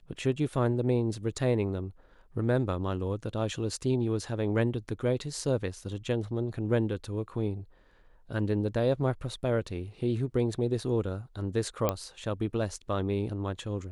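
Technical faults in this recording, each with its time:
11.89 pop -12 dBFS

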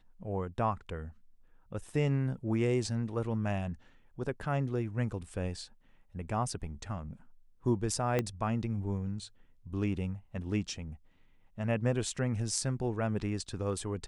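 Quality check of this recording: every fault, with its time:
8.19 pop -16 dBFS

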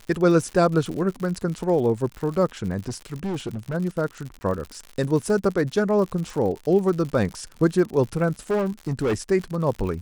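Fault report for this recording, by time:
crackle 83/s -30 dBFS
2.88–3.75 clipped -24 dBFS
4.39–4.41 gap 20 ms
8.5–9.14 clipped -19 dBFS

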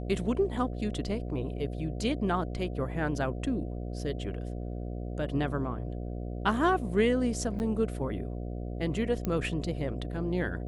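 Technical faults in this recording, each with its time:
buzz 60 Hz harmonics 12 -36 dBFS
7.59–7.6 gap 9.8 ms
9.25 pop -18 dBFS

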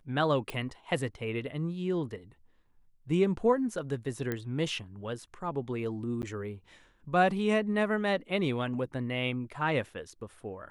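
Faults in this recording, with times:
0.5 pop
4.32 pop -19 dBFS
6.22–6.23 gap 9.8 ms

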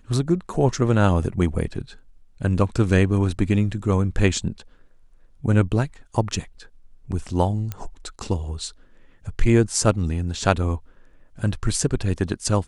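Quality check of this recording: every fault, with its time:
7.72 pop -15 dBFS

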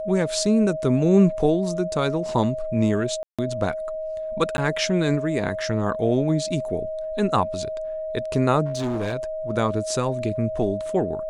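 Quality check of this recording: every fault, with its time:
tone 630 Hz -27 dBFS
3.23–3.39 gap 0.156 s
4.57–4.58 gap
8.65–9.14 clipped -22 dBFS

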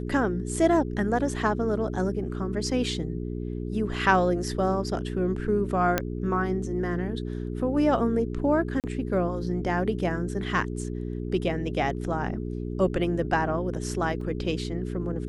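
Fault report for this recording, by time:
hum 60 Hz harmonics 7 -32 dBFS
5.98 pop -8 dBFS
8.8–8.84 gap 38 ms
14.21 gap 3.4 ms

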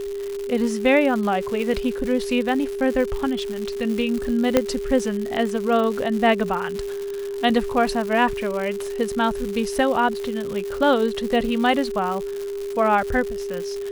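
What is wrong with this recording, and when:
crackle 230/s -27 dBFS
tone 400 Hz -26 dBFS
4.57 pop -3 dBFS

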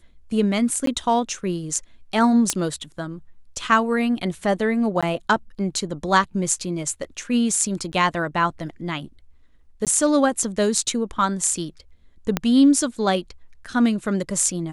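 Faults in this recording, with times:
0.86–0.87 gap 13 ms
2.5 pop -5 dBFS
5.01–5.03 gap 16 ms
7.92–7.93 gap 9.8 ms
9.85–9.87 gap 17 ms
12.37 pop -6 dBFS

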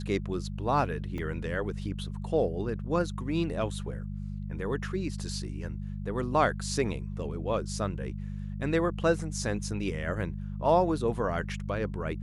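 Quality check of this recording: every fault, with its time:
hum 50 Hz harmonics 4 -36 dBFS
1.18 gap 2.2 ms

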